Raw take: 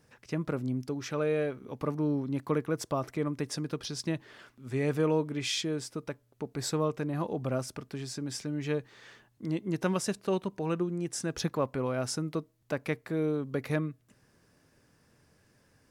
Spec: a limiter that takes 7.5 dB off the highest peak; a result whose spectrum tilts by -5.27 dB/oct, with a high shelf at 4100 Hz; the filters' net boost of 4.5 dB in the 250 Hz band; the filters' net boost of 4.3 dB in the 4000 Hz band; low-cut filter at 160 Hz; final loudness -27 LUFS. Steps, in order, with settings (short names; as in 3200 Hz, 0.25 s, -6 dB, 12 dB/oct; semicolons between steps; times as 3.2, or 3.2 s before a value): HPF 160 Hz; bell 250 Hz +7 dB; bell 4000 Hz +8.5 dB; high shelf 4100 Hz -4.5 dB; gain +5 dB; limiter -15.5 dBFS